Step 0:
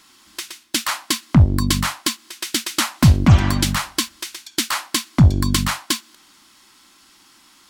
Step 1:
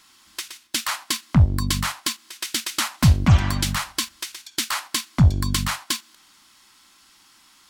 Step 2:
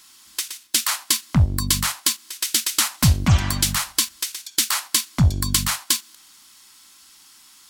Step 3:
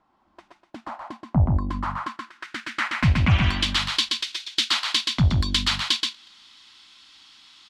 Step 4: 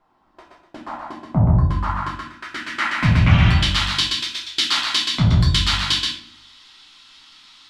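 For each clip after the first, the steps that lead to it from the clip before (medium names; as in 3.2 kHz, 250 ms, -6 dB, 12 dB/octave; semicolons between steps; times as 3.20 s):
peaking EQ 320 Hz -6 dB 1.5 oct; in parallel at -2 dB: level held to a coarse grid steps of 15 dB; on the sum: trim -5 dB
treble shelf 4.5 kHz +11.5 dB; trim -1.5 dB
delay 127 ms -3.5 dB; low-pass sweep 730 Hz -> 3.6 kHz, 1.31–3.86 s; trim -3 dB
simulated room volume 59 m³, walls mixed, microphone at 0.86 m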